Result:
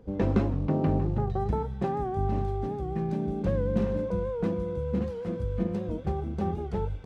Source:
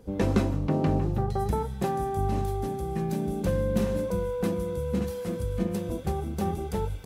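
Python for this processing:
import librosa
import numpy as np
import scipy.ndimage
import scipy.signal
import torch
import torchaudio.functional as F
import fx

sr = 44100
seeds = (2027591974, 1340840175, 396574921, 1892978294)

y = fx.quant_float(x, sr, bits=4)
y = fx.spacing_loss(y, sr, db_at_10k=24)
y = fx.record_warp(y, sr, rpm=78.0, depth_cents=100.0)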